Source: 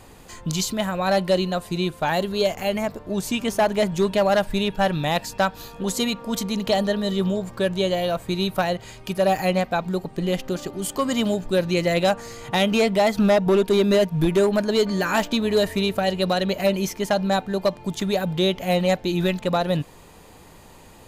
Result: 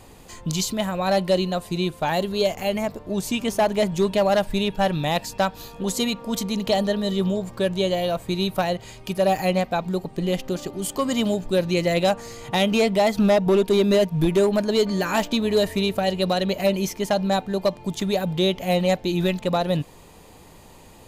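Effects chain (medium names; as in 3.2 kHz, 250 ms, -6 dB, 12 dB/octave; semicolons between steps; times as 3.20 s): peaking EQ 1.5 kHz -4 dB 0.68 oct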